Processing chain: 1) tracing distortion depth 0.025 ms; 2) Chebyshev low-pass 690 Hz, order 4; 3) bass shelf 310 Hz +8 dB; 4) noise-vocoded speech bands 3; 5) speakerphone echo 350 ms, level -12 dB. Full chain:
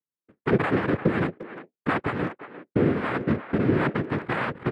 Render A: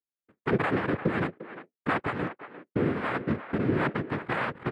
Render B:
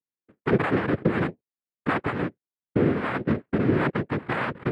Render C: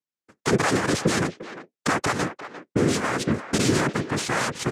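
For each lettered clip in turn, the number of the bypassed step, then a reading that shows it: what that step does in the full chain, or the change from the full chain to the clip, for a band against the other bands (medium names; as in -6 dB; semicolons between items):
3, 125 Hz band -2.5 dB; 5, momentary loudness spread change -2 LU; 2, 4 kHz band +12.5 dB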